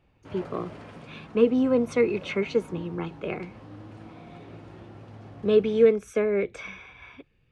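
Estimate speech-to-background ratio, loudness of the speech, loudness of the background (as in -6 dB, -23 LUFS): 20.0 dB, -25.5 LUFS, -45.5 LUFS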